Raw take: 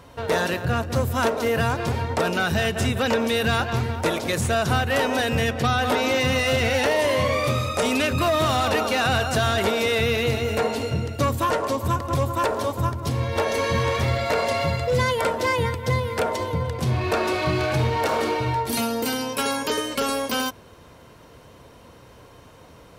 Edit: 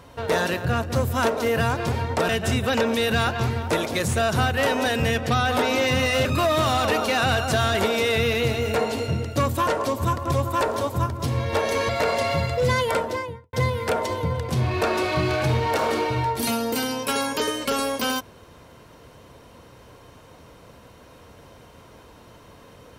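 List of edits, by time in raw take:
0:02.29–0:02.62: remove
0:06.58–0:08.08: remove
0:13.72–0:14.19: remove
0:15.20–0:15.83: fade out and dull

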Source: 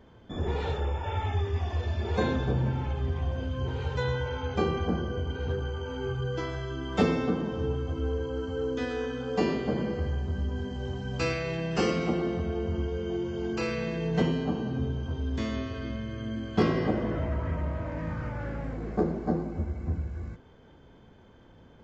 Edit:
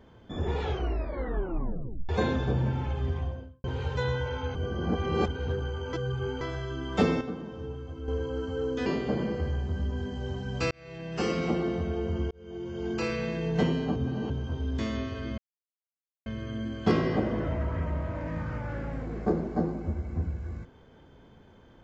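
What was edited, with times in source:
0:00.60: tape stop 1.49 s
0:03.09–0:03.64: fade out and dull
0:04.55–0:05.28: reverse
0:05.93–0:06.41: reverse
0:07.21–0:08.08: clip gain −8 dB
0:08.86–0:09.45: remove
0:11.30–0:12.04: fade in
0:12.90–0:13.50: fade in
0:14.55–0:14.89: reverse
0:15.97: splice in silence 0.88 s

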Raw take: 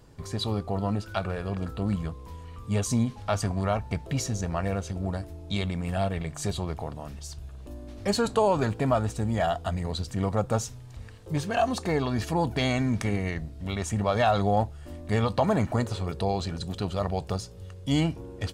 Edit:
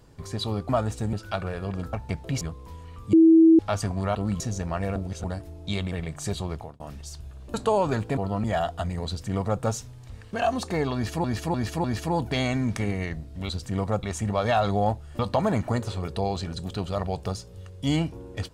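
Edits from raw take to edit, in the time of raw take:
0:00.69–0:00.96: swap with 0:08.87–0:09.31
0:01.76–0:02.01: swap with 0:03.75–0:04.23
0:02.73–0:03.19: beep over 325 Hz −11 dBFS
0:04.79–0:05.07: reverse
0:05.75–0:06.10: remove
0:06.73–0:06.98: fade out
0:07.72–0:08.24: remove
0:09.94–0:10.48: duplicate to 0:13.74
0:11.20–0:11.48: remove
0:12.09–0:12.39: repeat, 4 plays
0:14.90–0:15.23: remove

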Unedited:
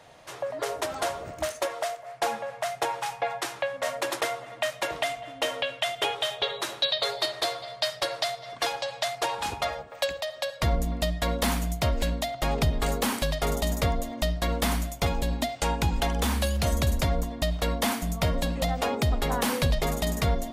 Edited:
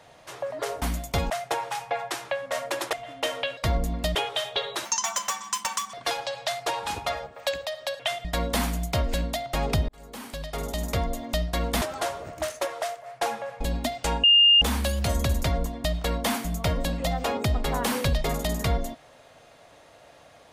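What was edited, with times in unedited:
0:00.82–0:02.61: swap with 0:14.70–0:15.18
0:04.24–0:05.12: remove
0:05.76–0:06.01: swap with 0:10.55–0:11.13
0:06.71–0:08.49: play speed 164%
0:12.77–0:14.05: fade in
0:15.81–0:16.19: beep over 2,820 Hz −13 dBFS

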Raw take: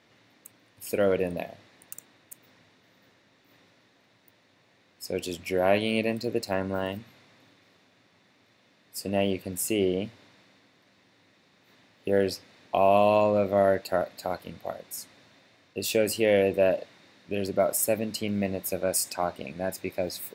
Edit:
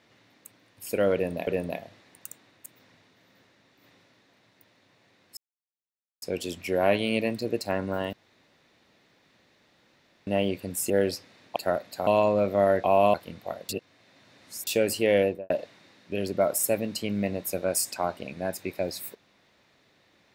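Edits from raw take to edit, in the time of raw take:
0:01.14–0:01.47: repeat, 2 plays
0:05.04: splice in silence 0.85 s
0:06.95–0:09.09: fill with room tone
0:09.72–0:12.09: remove
0:12.75–0:13.05: swap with 0:13.82–0:14.33
0:14.88–0:15.86: reverse
0:16.39–0:16.69: fade out and dull

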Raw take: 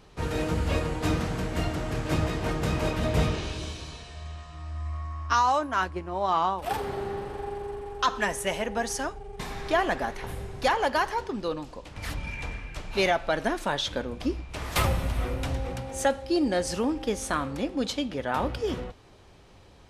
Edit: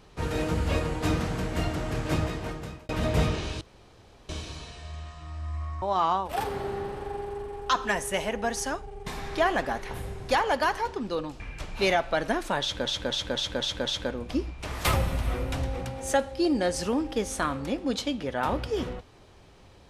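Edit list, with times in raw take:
0:02.11–0:02.89: fade out
0:03.61: splice in room tone 0.68 s
0:05.14–0:06.15: remove
0:11.73–0:12.56: remove
0:13.77–0:14.02: repeat, 6 plays

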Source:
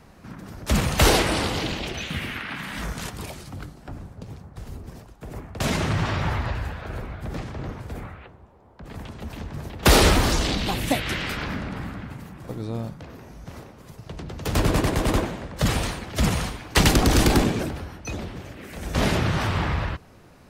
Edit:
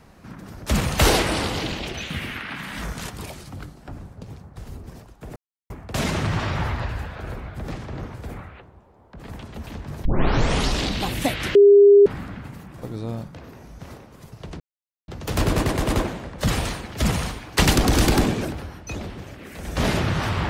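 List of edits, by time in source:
0:05.36: splice in silence 0.34 s
0:09.71: tape start 0.78 s
0:11.21–0:11.72: beep over 404 Hz −7.5 dBFS
0:14.26: splice in silence 0.48 s

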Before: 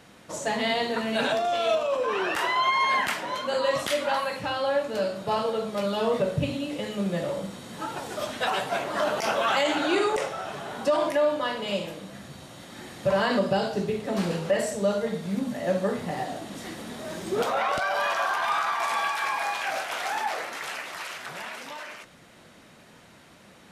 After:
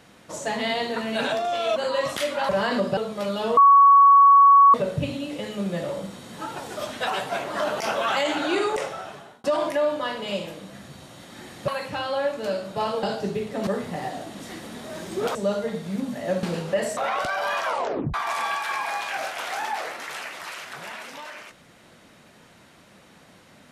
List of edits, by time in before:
0:01.76–0:03.46: remove
0:04.19–0:05.54: swap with 0:13.08–0:13.56
0:06.14: insert tone 1,120 Hz −9.5 dBFS 1.17 s
0:10.33–0:10.84: fade out
0:14.20–0:14.74: swap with 0:15.82–0:17.50
0:18.18: tape stop 0.49 s

